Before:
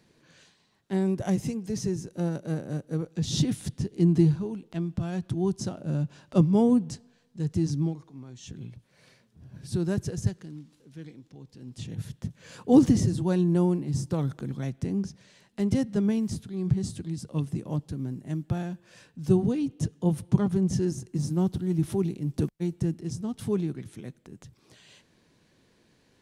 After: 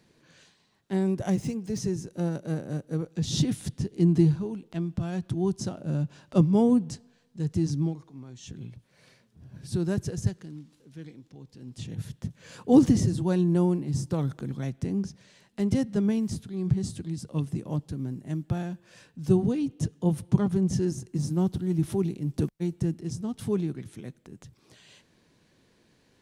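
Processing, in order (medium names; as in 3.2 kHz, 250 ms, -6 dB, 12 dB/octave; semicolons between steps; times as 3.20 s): 1.31–1.78 s: median filter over 3 samples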